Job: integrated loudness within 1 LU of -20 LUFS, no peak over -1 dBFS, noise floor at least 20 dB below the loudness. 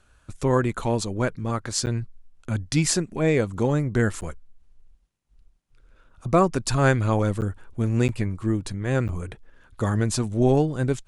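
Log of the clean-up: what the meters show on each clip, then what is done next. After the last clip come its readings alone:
dropouts 5; longest dropout 9.2 ms; loudness -24.0 LUFS; peak -6.5 dBFS; loudness target -20.0 LUFS
-> interpolate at 1.86/4.21/7.41/8.08/9.08, 9.2 ms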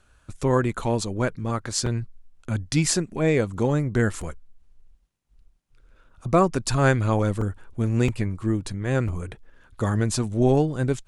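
dropouts 0; loudness -24.0 LUFS; peak -6.5 dBFS; loudness target -20.0 LUFS
-> gain +4 dB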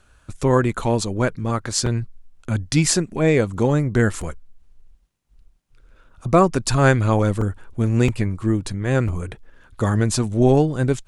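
loudness -20.0 LUFS; peak -2.5 dBFS; noise floor -57 dBFS

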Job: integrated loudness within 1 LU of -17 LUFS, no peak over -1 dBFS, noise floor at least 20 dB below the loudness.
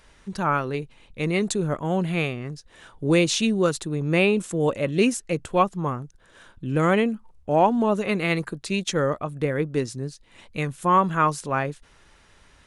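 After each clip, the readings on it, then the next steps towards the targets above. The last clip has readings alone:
loudness -24.0 LUFS; peak -6.0 dBFS; loudness target -17.0 LUFS
-> gain +7 dB; limiter -1 dBFS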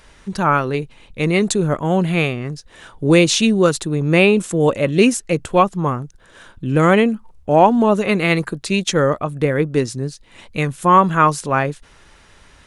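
loudness -17.0 LUFS; peak -1.0 dBFS; noise floor -49 dBFS

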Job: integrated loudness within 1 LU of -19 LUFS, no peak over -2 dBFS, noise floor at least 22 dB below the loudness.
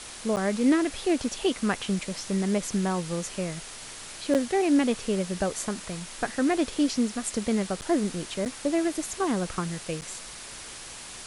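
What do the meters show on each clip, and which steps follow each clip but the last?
dropouts 5; longest dropout 8.7 ms; noise floor -42 dBFS; noise floor target -50 dBFS; loudness -27.5 LUFS; peak -12.5 dBFS; loudness target -19.0 LUFS
-> interpolate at 0.36/4.34/7.81/8.45/10.01, 8.7 ms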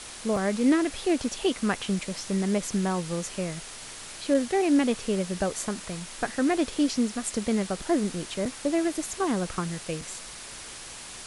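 dropouts 0; noise floor -42 dBFS; noise floor target -50 dBFS
-> noise print and reduce 8 dB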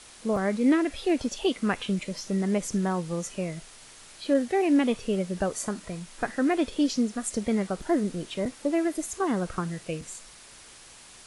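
noise floor -50 dBFS; loudness -27.5 LUFS; peak -13.0 dBFS; loudness target -19.0 LUFS
-> gain +8.5 dB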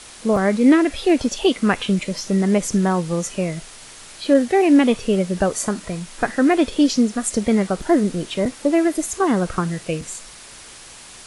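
loudness -19.0 LUFS; peak -4.5 dBFS; noise floor -41 dBFS

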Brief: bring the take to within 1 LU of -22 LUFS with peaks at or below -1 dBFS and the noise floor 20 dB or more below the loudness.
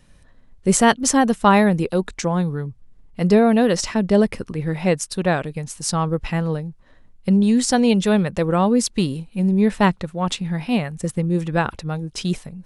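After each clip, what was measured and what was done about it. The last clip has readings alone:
loudness -20.0 LUFS; peak -1.0 dBFS; loudness target -22.0 LUFS
-> gain -2 dB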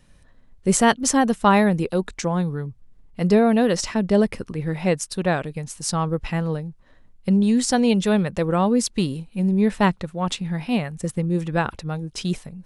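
loudness -22.0 LUFS; peak -3.0 dBFS; noise floor -53 dBFS

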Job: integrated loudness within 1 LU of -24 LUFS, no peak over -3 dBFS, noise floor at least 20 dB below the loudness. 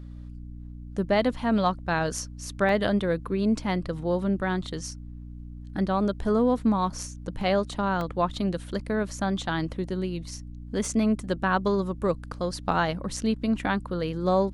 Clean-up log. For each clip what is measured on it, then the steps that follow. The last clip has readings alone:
dropouts 4; longest dropout 1.7 ms; hum 60 Hz; harmonics up to 300 Hz; hum level -38 dBFS; loudness -27.0 LUFS; peak -9.5 dBFS; loudness target -24.0 LUFS
-> interpolate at 2.69/7.41/8.01/10.85, 1.7 ms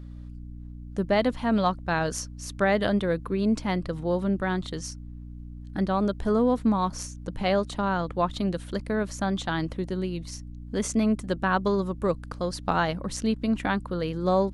dropouts 0; hum 60 Hz; harmonics up to 300 Hz; hum level -38 dBFS
-> de-hum 60 Hz, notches 5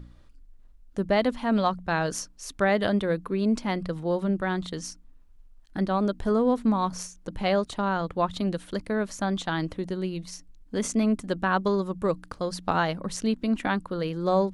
hum none; loudness -27.5 LUFS; peak -9.5 dBFS; loudness target -24.0 LUFS
-> gain +3.5 dB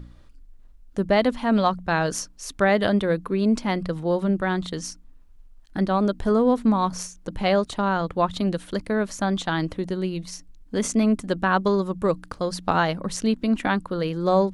loudness -24.0 LUFS; peak -6.0 dBFS; noise floor -49 dBFS

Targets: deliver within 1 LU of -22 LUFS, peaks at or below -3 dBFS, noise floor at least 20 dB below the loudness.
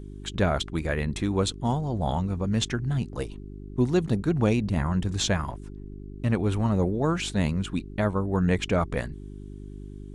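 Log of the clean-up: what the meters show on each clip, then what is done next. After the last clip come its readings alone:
hum 50 Hz; harmonics up to 400 Hz; hum level -39 dBFS; loudness -27.0 LUFS; peak -10.0 dBFS; loudness target -22.0 LUFS
-> de-hum 50 Hz, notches 8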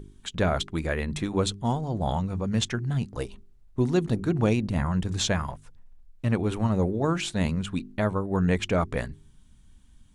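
hum none; loudness -27.5 LUFS; peak -11.0 dBFS; loudness target -22.0 LUFS
-> gain +5.5 dB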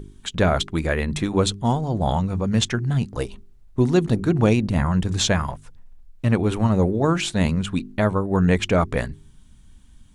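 loudness -22.0 LUFS; peak -5.5 dBFS; noise floor -49 dBFS

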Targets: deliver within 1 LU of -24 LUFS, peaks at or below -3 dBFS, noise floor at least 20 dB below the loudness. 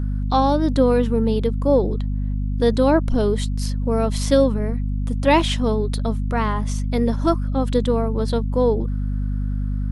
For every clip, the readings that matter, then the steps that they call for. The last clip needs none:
hum 50 Hz; harmonics up to 250 Hz; hum level -20 dBFS; loudness -21.0 LUFS; peak -3.5 dBFS; loudness target -24.0 LUFS
-> de-hum 50 Hz, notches 5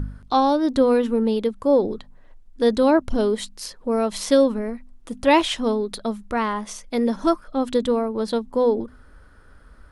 hum none; loudness -21.5 LUFS; peak -5.5 dBFS; loudness target -24.0 LUFS
-> gain -2.5 dB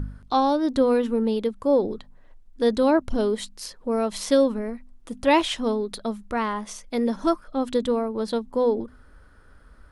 loudness -24.0 LUFS; peak -8.0 dBFS; noise floor -51 dBFS

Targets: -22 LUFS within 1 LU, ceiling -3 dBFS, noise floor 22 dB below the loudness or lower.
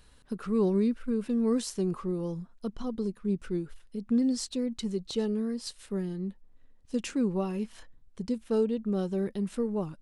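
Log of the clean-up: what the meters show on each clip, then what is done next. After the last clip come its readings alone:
loudness -31.0 LUFS; peak -17.0 dBFS; loudness target -22.0 LUFS
-> gain +9 dB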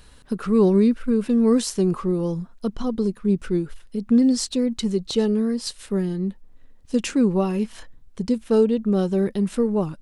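loudness -22.0 LUFS; peak -8.0 dBFS; noise floor -49 dBFS

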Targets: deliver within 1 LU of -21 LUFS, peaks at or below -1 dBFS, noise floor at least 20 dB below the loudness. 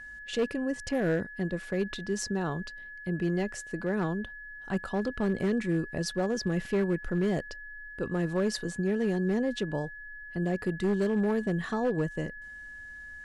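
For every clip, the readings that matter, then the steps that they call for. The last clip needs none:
clipped 1.5%; flat tops at -21.5 dBFS; steady tone 1700 Hz; tone level -42 dBFS; loudness -31.0 LUFS; peak -21.5 dBFS; loudness target -21.0 LUFS
-> clip repair -21.5 dBFS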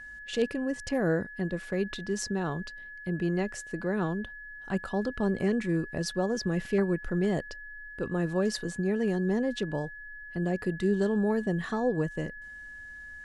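clipped 0.0%; steady tone 1700 Hz; tone level -42 dBFS
-> notch 1700 Hz, Q 30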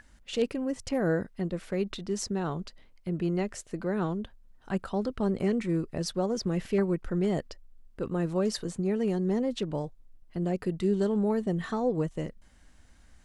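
steady tone none; loudness -30.5 LUFS; peak -14.5 dBFS; loudness target -21.0 LUFS
-> gain +9.5 dB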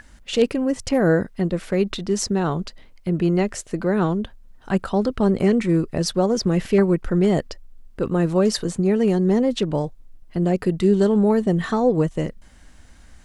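loudness -21.0 LUFS; peak -5.0 dBFS; noise floor -48 dBFS

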